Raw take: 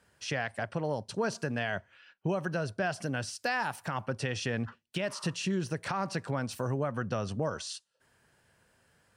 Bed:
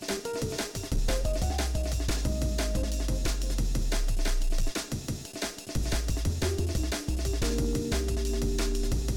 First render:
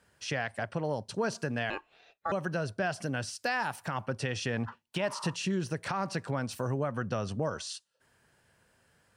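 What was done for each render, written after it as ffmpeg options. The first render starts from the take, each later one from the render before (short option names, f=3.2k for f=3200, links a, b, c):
-filter_complex "[0:a]asettb=1/sr,asplit=3[a][b][c];[a]atrim=end=1.704[d];[b]atrim=start=1.7:end=2.32,asetpts=PTS-STARTPTS,afade=t=in:d=0.004:c=qsin,afade=t=out:st=0.616:d=0.004:c=qsin,aeval=exprs='val(0)*sin(2*PI*990*n/s)':c=same[e];[c]atrim=start=2.316[f];[d][e]acrossfade=d=0.004:c1=hsin:c2=qsin[g];[g][f]acrossfade=d=0.004:c1=qsin:c2=hsin,asettb=1/sr,asplit=3[h][i][j];[h]atrim=end=4.564[k];[i]atrim=start=4.56:end=5.36,asetpts=PTS-STARTPTS,afade=t=in:d=0.004:c=qsin,afade=t=out:st=0.796:d=0.004:c=qsin,equalizer=f=920:w=2.4:g=11[l];[j]atrim=start=5.356[m];[k][l]acrossfade=d=0.004:c1=hsin:c2=qsin[n];[n][m]acrossfade=d=0.004:c1=qsin:c2=hsin"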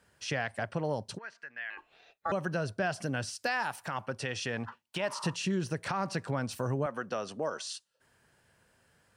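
-filter_complex "[0:a]asplit=3[a][b][c];[a]afade=t=out:st=1.17:d=0.02[d];[b]bandpass=f=1.9k:t=q:w=3.9,afade=t=in:st=1.17:d=0.02,afade=t=out:st=1.77:d=0.02[e];[c]afade=t=in:st=1.77:d=0.02[f];[d][e][f]amix=inputs=3:normalize=0,asettb=1/sr,asplit=3[g][h][i];[g]atrim=end=3.474[j];[h]atrim=start=3.47:end=5.16,asetpts=PTS-STARTPTS,afade=t=in:d=0.004:c=qsin,afade=t=out:st=1.686:d=0.004:c=qsin,lowshelf=f=320:g=-6.5[k];[i]atrim=start=5.156[l];[j][k]acrossfade=d=0.004:c1=hsin:c2=qsin[m];[m][l]acrossfade=d=0.004:c1=qsin:c2=hsin,asettb=1/sr,asplit=3[n][o][p];[n]atrim=end=6.864[q];[o]atrim=start=6.86:end=7.65,asetpts=PTS-STARTPTS,afade=t=in:d=0.004:c=qsin,afade=t=out:st=0.786:d=0.004:c=qsin,highpass=310[r];[p]atrim=start=7.646[s];[q][r]acrossfade=d=0.004:c1=hsin:c2=qsin[t];[t][s]acrossfade=d=0.004:c1=qsin:c2=hsin"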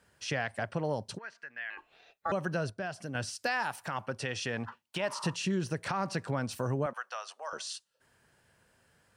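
-filter_complex "[0:a]asettb=1/sr,asplit=3[a][b][c];[a]atrim=end=6.934[d];[b]atrim=start=6.93:end=7.53,asetpts=PTS-STARTPTS,afade=t=in:d=0.004:c=qsin,afade=t=out:st=0.596:d=0.004:c=qsin,highpass=f=790:w=0.5412,highpass=f=790:w=1.3066[e];[c]atrim=start=7.526[f];[d][e]acrossfade=d=0.004:c1=hsin:c2=qsin[g];[g][f]acrossfade=d=0.004:c1=qsin:c2=hsin,asplit=3[h][i][j];[h]atrim=end=2.702[k];[i]atrim=start=2.698:end=3.152,asetpts=PTS-STARTPTS,volume=-6dB[l];[j]atrim=start=3.148[m];[k][l]acrossfade=d=0.004:c1=hsin:c2=hsin[n];[n][m]acrossfade=d=0.004:c1=hsin:c2=hsin"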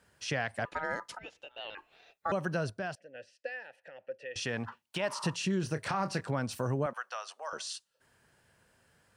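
-filter_complex "[0:a]asettb=1/sr,asplit=3[a][b][c];[a]atrim=end=0.654[d];[b]atrim=start=0.65:end=1.75,asetpts=PTS-STARTPTS,afade=t=in:d=0.004:c=qsin,afade=t=out:st=1.096:d=0.004:c=qsin,aeval=exprs='val(0)*sin(2*PI*1100*n/s)':c=same[e];[c]atrim=start=1.746[f];[d][e]acrossfade=d=0.004:c1=hsin:c2=qsin[g];[g][f]acrossfade=d=0.004:c1=qsin:c2=hsin,asettb=1/sr,asplit=3[h][i][j];[h]atrim=end=2.954[k];[i]atrim=start=2.95:end=4.36,asetpts=PTS-STARTPTS,afade=t=in:d=0.004:c=qsin,afade=t=out:st=1.406:d=0.004:c=qsin,asplit=3[l][m][n];[l]bandpass=f=530:t=q:w=8,volume=0dB[o];[m]bandpass=f=1.84k:t=q:w=8,volume=-6dB[p];[n]bandpass=f=2.48k:t=q:w=8,volume=-9dB[q];[o][p][q]amix=inputs=3:normalize=0[r];[j]atrim=start=4.356[s];[k][r]acrossfade=d=0.004:c1=hsin:c2=qsin[t];[t][s]acrossfade=d=0.004:c1=qsin:c2=hsin,asettb=1/sr,asplit=3[u][v][w];[u]atrim=end=5.604[x];[v]atrim=start=5.6:end=6.21,asetpts=PTS-STARTPTS,afade=t=in:d=0.004:c=qsin,afade=t=out:st=0.606:d=0.004:c=qsin,asplit=2[y][z];[z]adelay=27,volume=-10dB[aa];[y][aa]amix=inputs=2:normalize=0,atrim=end_sample=26901[ab];[w]atrim=start=6.206[ac];[x][ab]acrossfade=d=0.004:c1=hsin:c2=qsin[ad];[ad][ac]acrossfade=d=0.004:c1=qsin:c2=hsin"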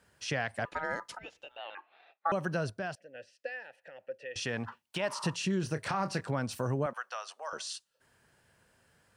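-filter_complex "[0:a]asettb=1/sr,asplit=3[a][b][c];[a]atrim=end=1.574[d];[b]atrim=start=1.57:end=2.32,asetpts=PTS-STARTPTS,afade=t=in:d=0.004:c=qsin,afade=t=out:st=0.746:d=0.004:c=qsin,highpass=380,equalizer=f=440:t=q:w=4:g=-6,equalizer=f=800:t=q:w=4:g=5,equalizer=f=1.2k:t=q:w=4:g=4,equalizer=f=2.9k:t=q:w=4:g=-4,lowpass=f=3.5k:w=0.5412,lowpass=f=3.5k:w=1.3066[e];[c]atrim=start=2.316[f];[d][e]acrossfade=d=0.004:c1=hsin:c2=qsin[g];[g][f]acrossfade=d=0.004:c1=qsin:c2=hsin"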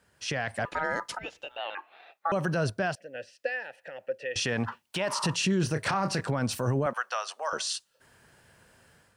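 -af "alimiter=level_in=2dB:limit=-24dB:level=0:latency=1:release=17,volume=-2dB,dynaudnorm=f=120:g=5:m=8dB"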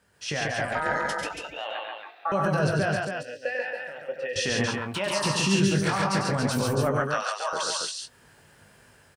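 -filter_complex "[0:a]asplit=2[a][b];[b]adelay=20,volume=-7.5dB[c];[a][c]amix=inputs=2:normalize=0,asplit=2[d][e];[e]aecho=0:1:96.21|137|279.9:0.447|0.794|0.562[f];[d][f]amix=inputs=2:normalize=0"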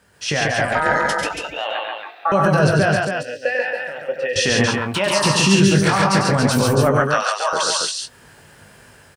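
-af "volume=9dB,alimiter=limit=-3dB:level=0:latency=1"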